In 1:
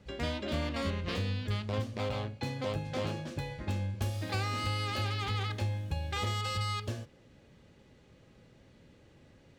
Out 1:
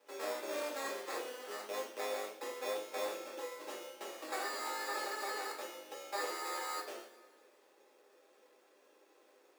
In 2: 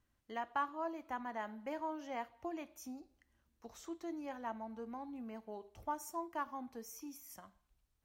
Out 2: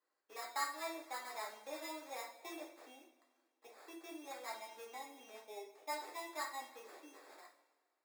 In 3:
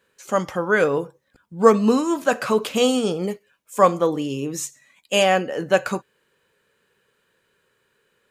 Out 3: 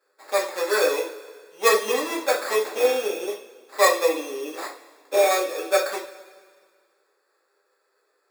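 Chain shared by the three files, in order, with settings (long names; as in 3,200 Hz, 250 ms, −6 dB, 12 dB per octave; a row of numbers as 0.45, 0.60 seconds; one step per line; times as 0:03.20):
sample-rate reduction 3,000 Hz, jitter 0%
Butterworth high-pass 330 Hz 36 dB per octave
coupled-rooms reverb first 0.35 s, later 1.8 s, from −18 dB, DRR −3.5 dB
level −7 dB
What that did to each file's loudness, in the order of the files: −6.0, −2.0, −2.5 LU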